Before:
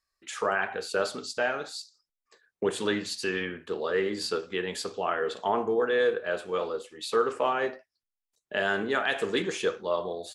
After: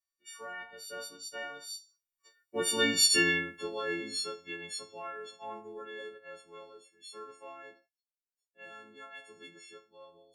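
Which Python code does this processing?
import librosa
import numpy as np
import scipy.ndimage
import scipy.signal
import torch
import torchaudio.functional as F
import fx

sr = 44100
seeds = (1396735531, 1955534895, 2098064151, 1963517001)

y = fx.freq_snap(x, sr, grid_st=4)
y = fx.doppler_pass(y, sr, speed_mps=9, closest_m=2.2, pass_at_s=3.11)
y = y * 10.0 ** (1.5 / 20.0)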